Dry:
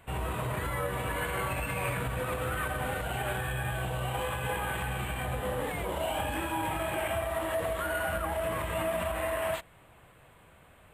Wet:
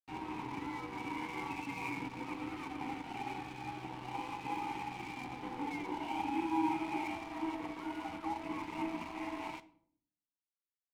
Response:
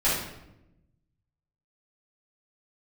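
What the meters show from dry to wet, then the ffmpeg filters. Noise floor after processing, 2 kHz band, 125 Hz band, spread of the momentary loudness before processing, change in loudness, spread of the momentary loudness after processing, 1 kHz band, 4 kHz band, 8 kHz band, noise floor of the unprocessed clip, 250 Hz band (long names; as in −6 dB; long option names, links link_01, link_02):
below −85 dBFS, −10.5 dB, −16.5 dB, 2 LU, −7.5 dB, 8 LU, −4.5 dB, −10.0 dB, −17.0 dB, −57 dBFS, +1.5 dB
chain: -filter_complex "[0:a]asplit=3[link_01][link_02][link_03];[link_01]bandpass=frequency=300:width_type=q:width=8,volume=0dB[link_04];[link_02]bandpass=frequency=870:width_type=q:width=8,volume=-6dB[link_05];[link_03]bandpass=frequency=2240:width_type=q:width=8,volume=-9dB[link_06];[link_04][link_05][link_06]amix=inputs=3:normalize=0,aeval=exprs='sgn(val(0))*max(abs(val(0))-0.00141,0)':channel_layout=same,asplit=2[link_07][link_08];[1:a]atrim=start_sample=2205,asetrate=74970,aresample=44100[link_09];[link_08][link_09]afir=irnorm=-1:irlink=0,volume=-21dB[link_10];[link_07][link_10]amix=inputs=2:normalize=0,volume=8.5dB"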